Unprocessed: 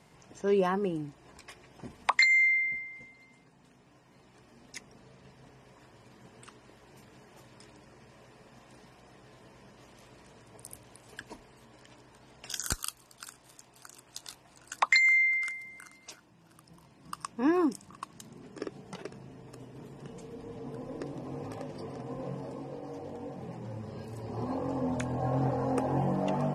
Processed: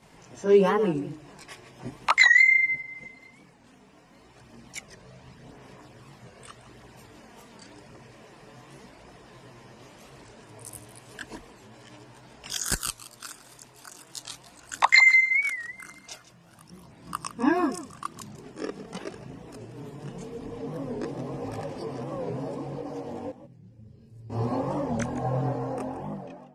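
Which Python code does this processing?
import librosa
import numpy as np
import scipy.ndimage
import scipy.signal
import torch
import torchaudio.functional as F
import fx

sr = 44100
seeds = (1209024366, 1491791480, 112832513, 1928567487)

y = fx.fade_out_tail(x, sr, length_s=1.99)
y = fx.tone_stack(y, sr, knobs='10-0-1', at=(23.29, 24.3))
y = fx.chorus_voices(y, sr, voices=2, hz=0.44, base_ms=22, depth_ms=4.9, mix_pct=65)
y = y + 10.0 ** (-14.5 / 20.0) * np.pad(y, (int(157 * sr / 1000.0), 0))[:len(y)]
y = fx.record_warp(y, sr, rpm=45.0, depth_cents=160.0)
y = y * librosa.db_to_amplitude(8.5)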